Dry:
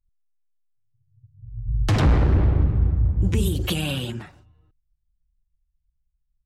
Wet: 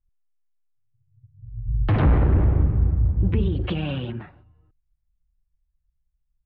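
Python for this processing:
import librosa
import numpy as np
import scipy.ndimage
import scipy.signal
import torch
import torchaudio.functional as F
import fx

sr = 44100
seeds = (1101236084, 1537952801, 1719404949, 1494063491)

y = scipy.signal.sosfilt(scipy.signal.bessel(6, 2000.0, 'lowpass', norm='mag', fs=sr, output='sos'), x)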